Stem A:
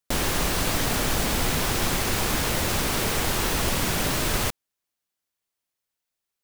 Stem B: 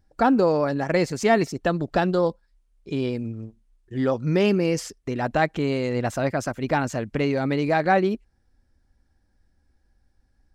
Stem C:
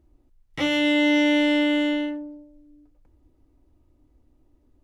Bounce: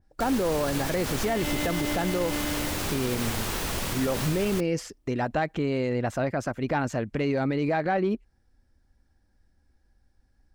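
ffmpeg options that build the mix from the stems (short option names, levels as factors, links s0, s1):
-filter_complex "[0:a]adelay=100,volume=0.531[s0];[1:a]acontrast=80,adynamicequalizer=threshold=0.0158:dfrequency=3400:dqfactor=0.7:tfrequency=3400:tqfactor=0.7:attack=5:release=100:ratio=0.375:range=3.5:mode=cutabove:tftype=highshelf,volume=0.422[s1];[2:a]adelay=650,volume=0.316[s2];[s0][s1][s2]amix=inputs=3:normalize=0,alimiter=limit=0.133:level=0:latency=1:release=60"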